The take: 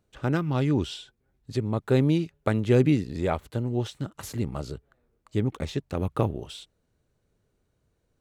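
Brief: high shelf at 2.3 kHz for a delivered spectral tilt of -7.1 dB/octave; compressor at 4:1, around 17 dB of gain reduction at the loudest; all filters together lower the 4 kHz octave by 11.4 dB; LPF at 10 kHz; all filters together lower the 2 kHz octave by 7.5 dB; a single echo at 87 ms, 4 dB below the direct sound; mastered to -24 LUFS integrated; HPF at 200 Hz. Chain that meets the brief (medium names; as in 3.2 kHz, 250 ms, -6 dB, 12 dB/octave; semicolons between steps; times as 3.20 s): high-pass 200 Hz; low-pass 10 kHz; peaking EQ 2 kHz -6.5 dB; treble shelf 2.3 kHz -4 dB; peaking EQ 4 kHz -8.5 dB; compression 4:1, threshold -39 dBFS; delay 87 ms -4 dB; trim +18 dB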